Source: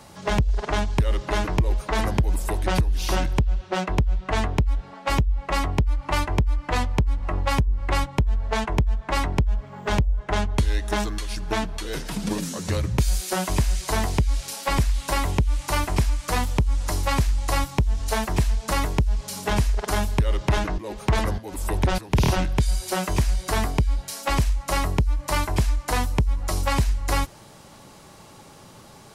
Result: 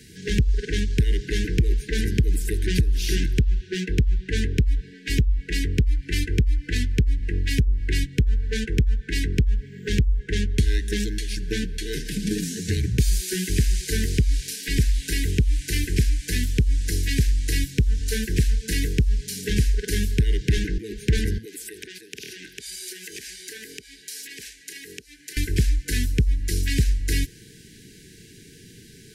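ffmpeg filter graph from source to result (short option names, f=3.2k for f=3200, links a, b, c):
-filter_complex "[0:a]asettb=1/sr,asplit=3[a][b][c];[a]atrim=end=21.454[d];[b]atrim=start=21.45:end=25.37,asetpts=PTS-STARTPTS,afade=t=in:d=0.004:c=qsin,afade=t=out:st=3.916:d=0.004:c=qsin,highpass=470,acompressor=threshold=-32dB:ratio=10:attack=3.2:release=140:knee=1:detection=peak[e];[c]atrim=start=25.366[f];[d][e]acrossfade=d=0.004:c1=hsin:c2=qsin[g];[g][f]acrossfade=d=0.004:c1=qsin:c2=hsin,afftfilt=real='re*(1-between(b*sr/4096,480,1500))':imag='im*(1-between(b*sr/4096,480,1500))':win_size=4096:overlap=0.75,acrossover=split=430|3000[h][i][j];[i]acompressor=threshold=-33dB:ratio=6[k];[h][k][j]amix=inputs=3:normalize=0,volume=1.5dB"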